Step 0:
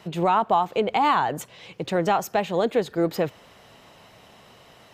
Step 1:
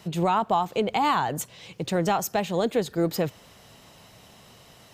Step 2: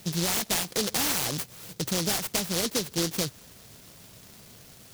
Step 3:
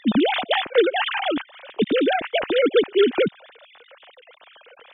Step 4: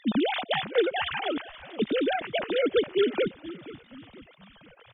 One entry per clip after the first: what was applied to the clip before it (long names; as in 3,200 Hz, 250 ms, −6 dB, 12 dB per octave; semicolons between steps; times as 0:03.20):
bass and treble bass +6 dB, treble +9 dB; level −3 dB
downward compressor 3 to 1, threshold −27 dBFS, peak gain reduction 7 dB; bit reduction 10 bits; short delay modulated by noise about 4,700 Hz, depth 0.33 ms; level +1.5 dB
three sine waves on the formant tracks; level +8.5 dB
echo with shifted repeats 476 ms, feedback 44%, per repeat −70 Hz, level −17 dB; level −6.5 dB